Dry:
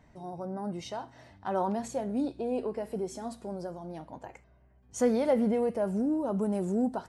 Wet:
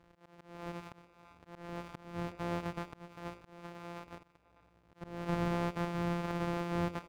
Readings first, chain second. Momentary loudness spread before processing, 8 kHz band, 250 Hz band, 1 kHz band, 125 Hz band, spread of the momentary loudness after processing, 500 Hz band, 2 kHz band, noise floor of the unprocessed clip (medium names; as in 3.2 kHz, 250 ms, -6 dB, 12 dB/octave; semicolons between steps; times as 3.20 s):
17 LU, -12.5 dB, -9.0 dB, -4.5 dB, +1.5 dB, 18 LU, -11.5 dB, +3.0 dB, -61 dBFS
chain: sorted samples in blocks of 256 samples; speakerphone echo 330 ms, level -16 dB; overdrive pedal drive 8 dB, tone 1.2 kHz, clips at -16 dBFS; on a send: band-passed feedback delay 75 ms, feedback 60%, band-pass 570 Hz, level -12 dB; on the sum: slow attack 378 ms; trim -2 dB